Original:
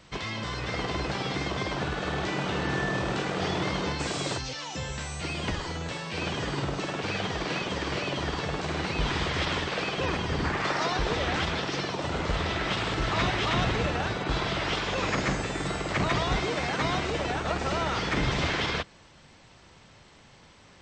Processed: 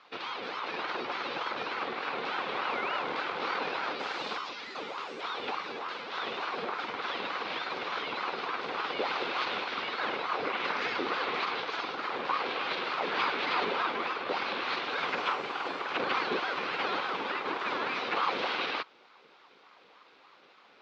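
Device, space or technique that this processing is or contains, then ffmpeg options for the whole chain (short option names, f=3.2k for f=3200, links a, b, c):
voice changer toy: -af "aeval=exprs='val(0)*sin(2*PI*740*n/s+740*0.6/3.4*sin(2*PI*3.4*n/s))':c=same,highpass=420,equalizer=f=640:t=q:w=4:g=-8,equalizer=f=900:t=q:w=4:g=-3,equalizer=f=1.8k:t=q:w=4:g=-6,equalizer=f=3k:t=q:w=4:g=-4,lowpass=f=3.9k:w=0.5412,lowpass=f=3.9k:w=1.3066,volume=3dB"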